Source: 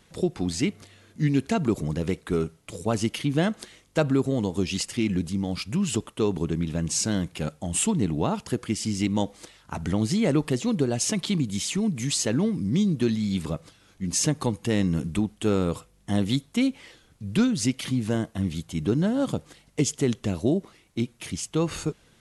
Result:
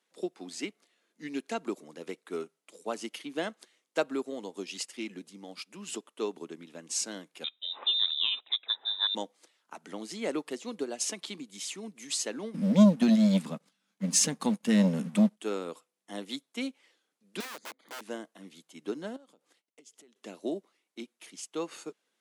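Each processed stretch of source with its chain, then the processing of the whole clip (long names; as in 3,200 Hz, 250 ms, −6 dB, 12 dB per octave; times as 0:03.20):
0:07.44–0:09.15: voice inversion scrambler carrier 3,800 Hz + hum removal 122.7 Hz, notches 6
0:12.54–0:15.40: low shelf with overshoot 270 Hz +9 dB, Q 3 + leveller curve on the samples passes 1
0:17.40–0:18.01: moving average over 16 samples + wrap-around overflow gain 26.5 dB
0:19.16–0:20.16: noise gate −55 dBFS, range −17 dB + downward compressor 10 to 1, threshold −36 dBFS
whole clip: Bessel high-pass filter 380 Hz, order 8; expander for the loud parts 1.5 to 1, over −49 dBFS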